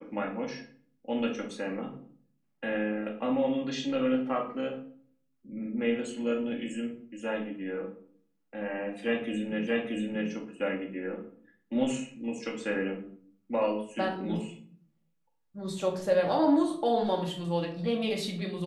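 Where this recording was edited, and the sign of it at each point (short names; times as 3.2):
9.67 repeat of the last 0.63 s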